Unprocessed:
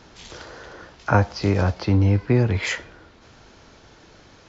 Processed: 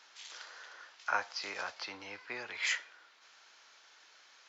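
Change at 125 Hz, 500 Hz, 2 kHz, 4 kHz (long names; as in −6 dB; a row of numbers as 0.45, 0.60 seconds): below −40 dB, −22.5 dB, −6.5 dB, −5.5 dB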